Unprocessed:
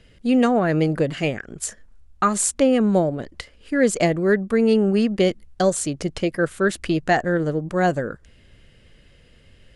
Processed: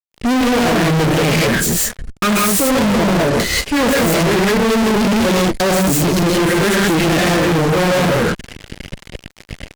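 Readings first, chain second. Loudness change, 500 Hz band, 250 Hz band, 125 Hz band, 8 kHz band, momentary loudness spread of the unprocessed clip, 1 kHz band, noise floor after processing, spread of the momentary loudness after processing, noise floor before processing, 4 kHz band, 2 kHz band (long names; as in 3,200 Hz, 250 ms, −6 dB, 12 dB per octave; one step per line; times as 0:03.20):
+6.5 dB, +4.5 dB, +6.0 dB, +9.0 dB, +8.0 dB, 11 LU, +7.5 dB, −49 dBFS, 7 LU, −53 dBFS, +14.5 dB, +9.5 dB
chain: phase distortion by the signal itself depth 0.16 ms
parametric band 900 Hz −8.5 dB 0.46 octaves
rotating-speaker cabinet horn 5.5 Hz
reverb whose tail is shaped and stops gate 210 ms rising, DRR −3.5 dB
fuzz pedal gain 41 dB, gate −43 dBFS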